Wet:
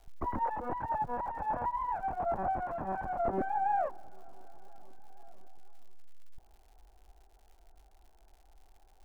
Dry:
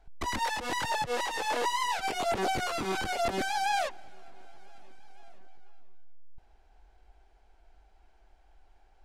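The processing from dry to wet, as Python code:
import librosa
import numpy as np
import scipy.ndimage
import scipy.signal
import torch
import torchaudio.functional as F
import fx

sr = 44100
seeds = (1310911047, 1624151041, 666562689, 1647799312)

y = fx.lower_of_two(x, sr, delay_ms=1.2, at=(0.72, 3.26))
y = scipy.signal.sosfilt(scipy.signal.butter(4, 1200.0, 'lowpass', fs=sr, output='sos'), y)
y = fx.dmg_crackle(y, sr, seeds[0], per_s=160.0, level_db=-53.0)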